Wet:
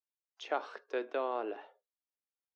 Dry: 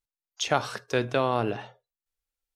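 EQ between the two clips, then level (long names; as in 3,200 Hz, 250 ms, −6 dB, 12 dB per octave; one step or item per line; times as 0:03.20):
Butterworth high-pass 310 Hz 36 dB per octave
high-frequency loss of the air 52 metres
head-to-tape spacing loss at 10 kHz 24 dB
−7.0 dB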